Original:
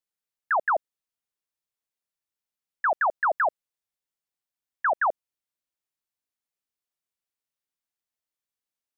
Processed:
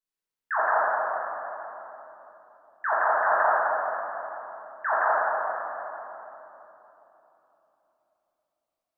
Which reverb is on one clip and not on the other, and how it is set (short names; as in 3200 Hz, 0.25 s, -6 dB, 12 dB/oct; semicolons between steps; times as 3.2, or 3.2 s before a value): shoebox room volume 220 m³, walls hard, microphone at 1.5 m; gain -8 dB